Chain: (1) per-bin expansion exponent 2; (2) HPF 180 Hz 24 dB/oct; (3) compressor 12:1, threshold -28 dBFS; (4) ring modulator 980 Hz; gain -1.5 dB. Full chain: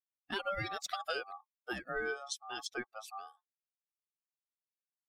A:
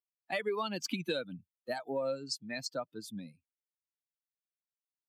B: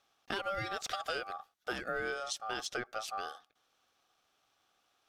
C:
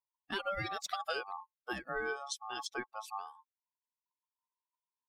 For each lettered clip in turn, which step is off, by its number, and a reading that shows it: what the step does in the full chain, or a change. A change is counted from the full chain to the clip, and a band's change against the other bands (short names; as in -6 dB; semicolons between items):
4, 250 Hz band +7.0 dB; 1, momentary loudness spread change -5 LU; 2, 1 kHz band +2.0 dB